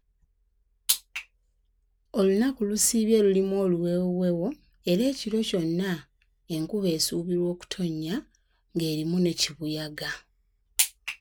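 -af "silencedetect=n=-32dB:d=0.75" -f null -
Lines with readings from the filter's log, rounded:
silence_start: 0.00
silence_end: 0.89 | silence_duration: 0.89
silence_start: 1.19
silence_end: 2.14 | silence_duration: 0.95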